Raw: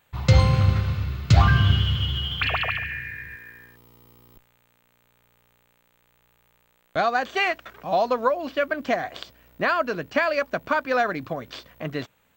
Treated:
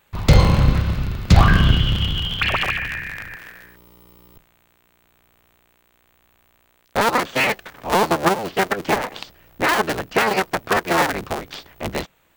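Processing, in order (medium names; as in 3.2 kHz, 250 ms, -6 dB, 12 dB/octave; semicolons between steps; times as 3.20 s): cycle switcher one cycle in 3, inverted; trim +4 dB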